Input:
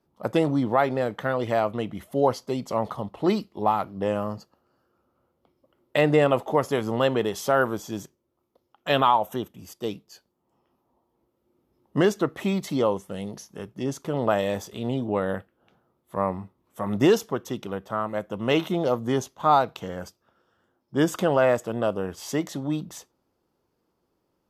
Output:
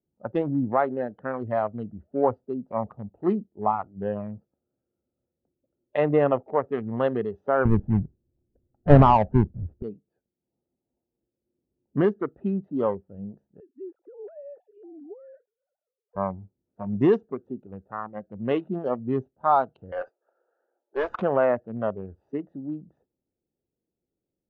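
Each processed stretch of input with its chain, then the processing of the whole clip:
0:07.65–0:09.83: each half-wave held at its own peak + RIAA equalisation playback
0:13.60–0:16.16: three sine waves on the formant tracks + downward compressor, threshold −30 dBFS
0:19.92–0:21.22: high-pass filter 460 Hz 24 dB per octave + mid-hump overdrive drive 25 dB, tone 2,700 Hz, clips at −14.5 dBFS
whole clip: adaptive Wiener filter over 41 samples; low-pass filter 1,500 Hz 12 dB per octave; noise reduction from a noise print of the clip's start 10 dB

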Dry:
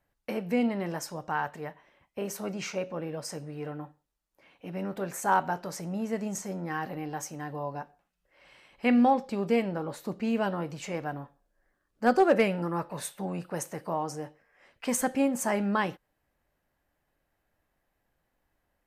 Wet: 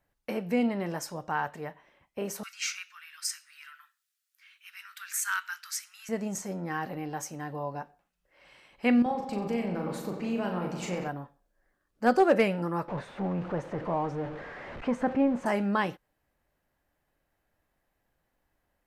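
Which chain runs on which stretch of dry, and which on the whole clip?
0:02.43–0:06.09: Butterworth high-pass 1,300 Hz 48 dB per octave + high-shelf EQ 2,200 Hz +8 dB
0:09.02–0:11.09: downward compressor 3 to 1, threshold −30 dBFS + double-tracking delay 39 ms −4.5 dB + feedback echo with a low-pass in the loop 91 ms, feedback 79%, low-pass 4,900 Hz, level −9.5 dB
0:12.88–0:15.46: converter with a step at zero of −32.5 dBFS + Bessel low-pass filter 1,300 Hz
whole clip: no processing

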